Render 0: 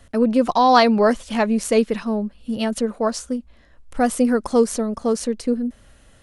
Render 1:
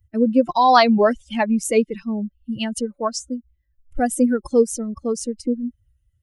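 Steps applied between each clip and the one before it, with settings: expander on every frequency bin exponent 2; in parallel at -1.5 dB: compression, threshold -28 dBFS, peak gain reduction 15.5 dB; on the sum: trim +1.5 dB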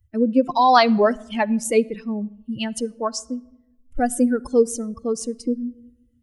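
simulated room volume 3400 m³, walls furnished, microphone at 0.36 m; trim -1 dB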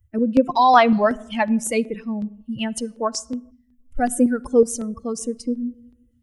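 time-frequency box 3.51–3.80 s, 270–1600 Hz -21 dB; LFO notch square 2.7 Hz 370–4500 Hz; trim +1.5 dB

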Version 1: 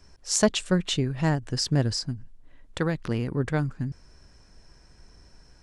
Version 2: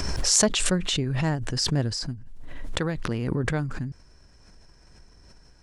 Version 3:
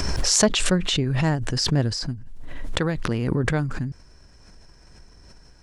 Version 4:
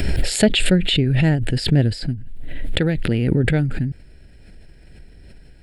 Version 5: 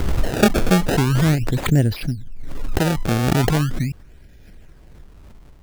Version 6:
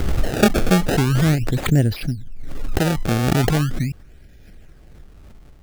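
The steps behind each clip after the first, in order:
swell ahead of each attack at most 24 dB/s; trim -2 dB
dynamic bell 8.9 kHz, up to -5 dB, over -40 dBFS, Q 1; trim +3.5 dB
static phaser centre 2.6 kHz, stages 4; trim +6 dB
decimation with a swept rate 25×, swing 160% 0.4 Hz
band-stop 980 Hz, Q 8.7

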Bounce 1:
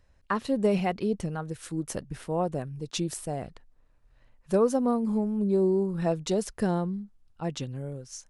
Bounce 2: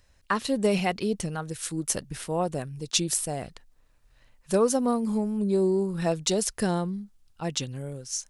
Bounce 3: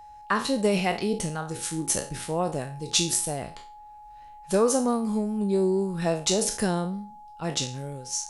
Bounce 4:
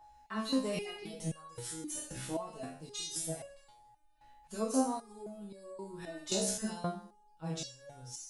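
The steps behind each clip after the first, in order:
treble shelf 2.3 kHz +12 dB
spectral sustain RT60 0.37 s; whistle 840 Hz -44 dBFS
reverberation, pre-delay 3 ms, DRR -1 dB; resonator arpeggio 3.8 Hz 64–560 Hz; trim -3 dB

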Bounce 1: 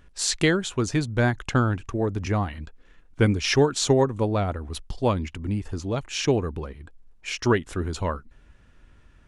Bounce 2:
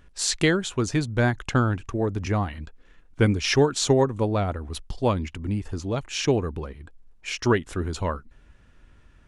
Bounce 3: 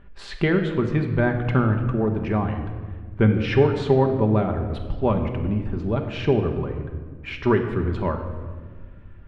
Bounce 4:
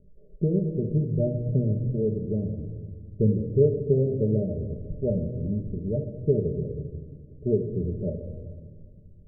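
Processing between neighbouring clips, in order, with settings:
no audible change
in parallel at -2 dB: compression, threshold -30 dBFS, peak gain reduction 15.5 dB; on the sum: distance through air 480 m; simulated room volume 1800 m³, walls mixed, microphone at 1.2 m
rippled Chebyshev low-pass 620 Hz, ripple 9 dB

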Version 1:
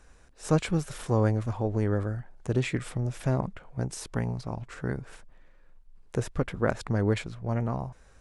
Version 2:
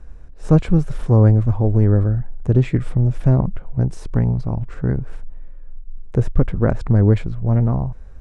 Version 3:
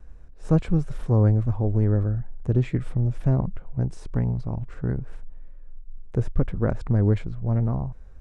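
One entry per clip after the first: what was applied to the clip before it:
tilt EQ -3.5 dB/octave; trim +3 dB
vibrato 2.2 Hz 34 cents; trim -6.5 dB

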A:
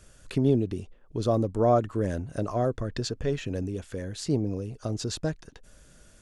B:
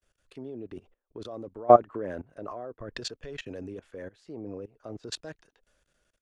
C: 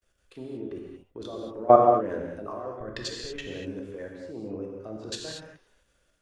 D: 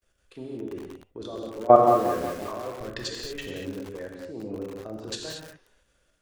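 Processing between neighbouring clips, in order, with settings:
tone controls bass -14 dB, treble -13 dB; level held to a coarse grid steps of 21 dB; three bands expanded up and down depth 70%; trim +3.5 dB
gated-style reverb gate 260 ms flat, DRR -0.5 dB
bit-crushed delay 180 ms, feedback 55%, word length 6-bit, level -8 dB; trim +1 dB

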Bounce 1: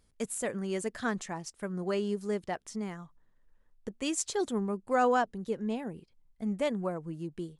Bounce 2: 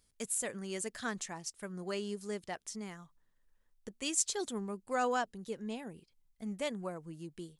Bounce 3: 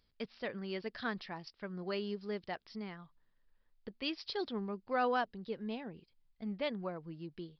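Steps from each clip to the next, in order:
treble shelf 2.3 kHz +11 dB; trim -7.5 dB
resampled via 11.025 kHz

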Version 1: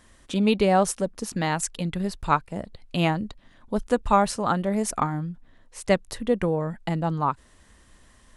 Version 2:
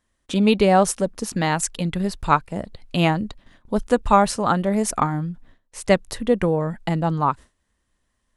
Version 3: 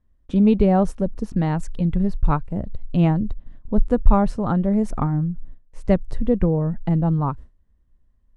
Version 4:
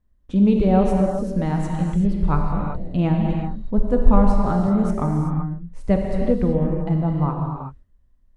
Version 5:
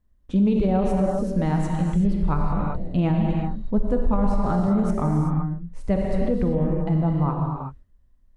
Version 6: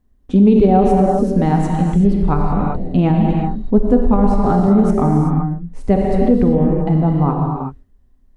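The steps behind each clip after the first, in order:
gate with hold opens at -42 dBFS; trim +4 dB
tilt EQ -4.5 dB/octave; trim -7.5 dB
gated-style reverb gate 410 ms flat, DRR 0 dB; trim -2.5 dB
peak limiter -13 dBFS, peak gain reduction 11.5 dB
small resonant body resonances 260/400/750 Hz, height 9 dB, ringing for 45 ms; trim +5 dB

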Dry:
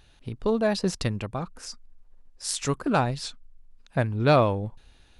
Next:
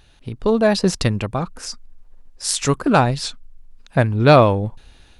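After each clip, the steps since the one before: level rider gain up to 4 dB; trim +4.5 dB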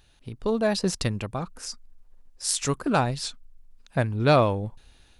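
treble shelf 5.9 kHz +6 dB; trim -8 dB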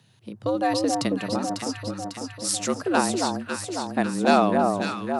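frequency shift +90 Hz; echo whose repeats swap between lows and highs 274 ms, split 1.2 kHz, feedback 77%, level -3 dB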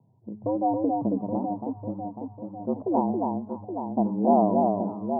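rippled Chebyshev low-pass 1 kHz, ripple 3 dB; feedback comb 210 Hz, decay 1.4 s, mix 60%; trim +7.5 dB

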